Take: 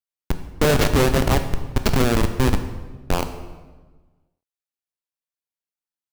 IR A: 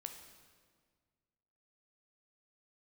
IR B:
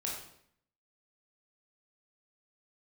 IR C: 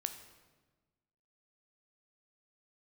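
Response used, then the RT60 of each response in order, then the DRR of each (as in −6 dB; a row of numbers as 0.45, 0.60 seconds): C; 1.7, 0.65, 1.3 seconds; 5.0, −3.5, 7.5 decibels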